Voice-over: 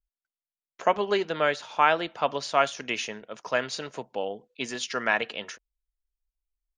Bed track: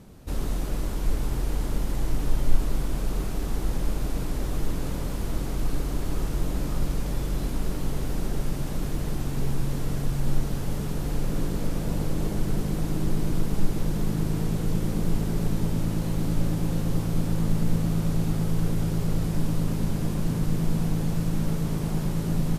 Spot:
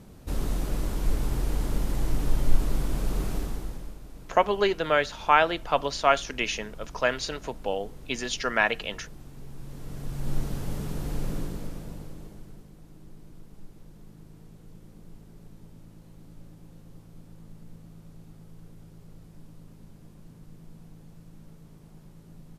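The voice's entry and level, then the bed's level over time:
3.50 s, +1.5 dB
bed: 3.36 s -0.5 dB
4.01 s -17 dB
9.48 s -17 dB
10.39 s -3.5 dB
11.29 s -3.5 dB
12.72 s -23.5 dB

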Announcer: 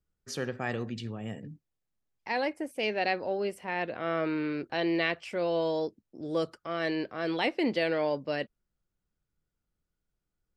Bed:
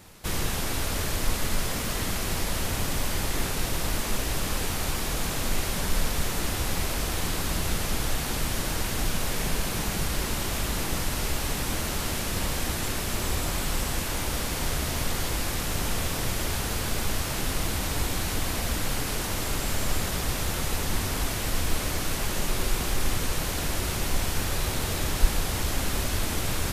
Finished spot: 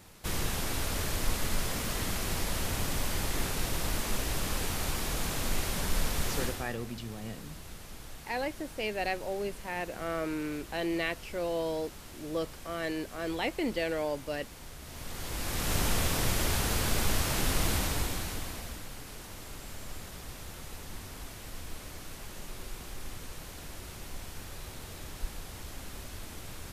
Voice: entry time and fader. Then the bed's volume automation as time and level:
6.00 s, -3.5 dB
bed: 6.43 s -4 dB
6.76 s -18.5 dB
14.78 s -18.5 dB
15.73 s -0.5 dB
17.75 s -0.5 dB
18.89 s -15.5 dB

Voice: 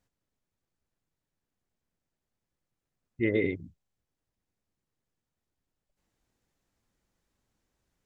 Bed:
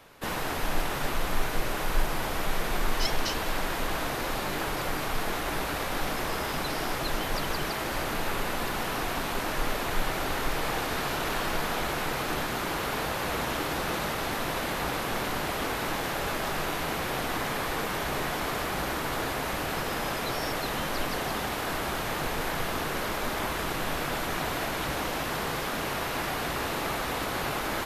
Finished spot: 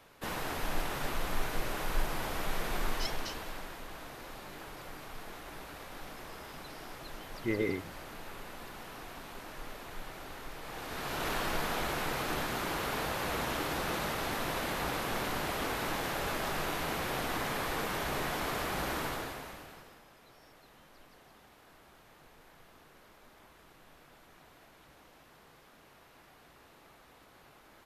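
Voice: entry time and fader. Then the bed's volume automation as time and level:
4.25 s, -5.0 dB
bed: 2.87 s -5.5 dB
3.83 s -15.5 dB
10.61 s -15.5 dB
11.26 s -4 dB
19.04 s -4 dB
20.06 s -28 dB

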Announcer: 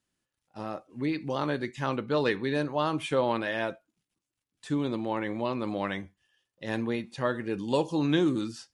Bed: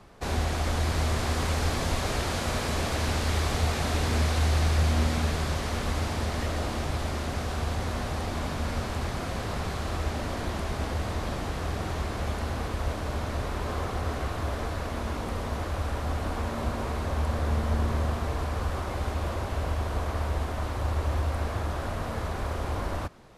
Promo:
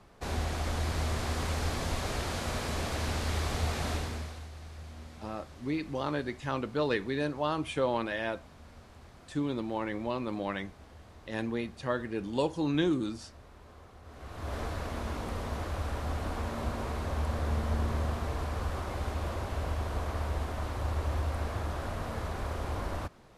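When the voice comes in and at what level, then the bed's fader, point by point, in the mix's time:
4.65 s, -3.0 dB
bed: 3.92 s -5 dB
4.5 s -22 dB
14.02 s -22 dB
14.56 s -4 dB

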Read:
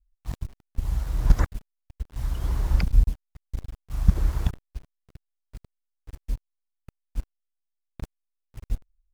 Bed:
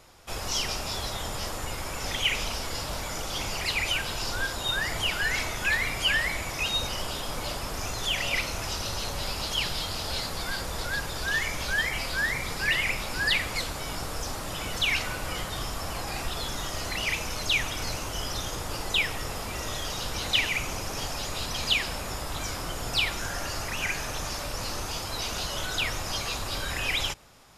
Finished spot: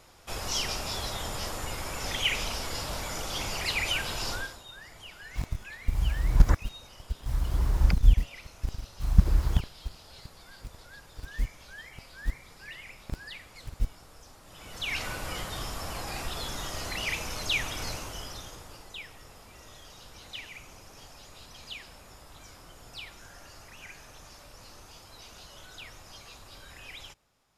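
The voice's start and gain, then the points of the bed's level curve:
5.10 s, -0.5 dB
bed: 4.33 s -1.5 dB
4.66 s -19 dB
14.42 s -19 dB
15.05 s -3 dB
17.88 s -3 dB
18.94 s -17 dB

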